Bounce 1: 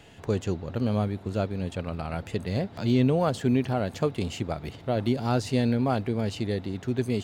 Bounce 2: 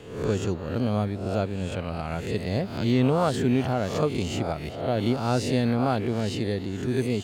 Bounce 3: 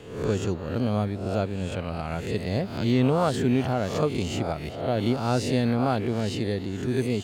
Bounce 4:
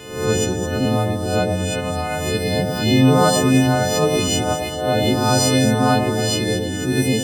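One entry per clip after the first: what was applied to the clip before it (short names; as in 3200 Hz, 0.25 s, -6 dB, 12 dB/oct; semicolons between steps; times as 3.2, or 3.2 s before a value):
spectral swells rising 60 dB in 0.68 s
nothing audible
frequency quantiser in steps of 3 st; echo with dull and thin repeats by turns 0.106 s, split 830 Hz, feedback 52%, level -3.5 dB; gain +6 dB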